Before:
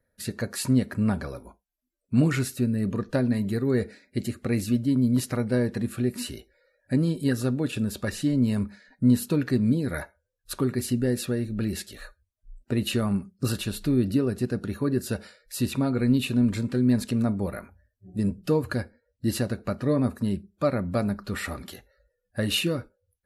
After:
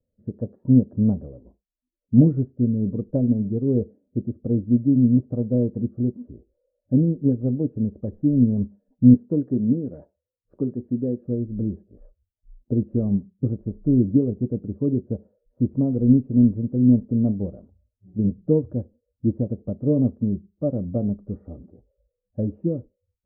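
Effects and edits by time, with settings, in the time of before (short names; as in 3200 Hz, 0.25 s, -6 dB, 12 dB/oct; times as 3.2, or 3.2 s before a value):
9.14–11.25 weighting filter D
whole clip: inverse Chebyshev low-pass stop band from 3100 Hz, stop band 80 dB; notch 380 Hz, Q 12; upward expander 1.5:1, over -36 dBFS; gain +8 dB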